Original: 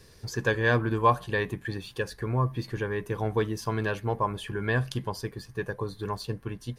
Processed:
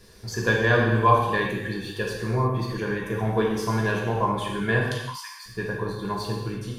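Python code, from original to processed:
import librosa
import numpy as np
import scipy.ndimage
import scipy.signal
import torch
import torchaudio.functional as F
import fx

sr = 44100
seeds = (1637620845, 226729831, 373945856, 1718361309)

y = fx.steep_highpass(x, sr, hz=1000.0, slope=72, at=(4.82, 5.46))
y = fx.rev_gated(y, sr, seeds[0], gate_ms=370, shape='falling', drr_db=-3.0)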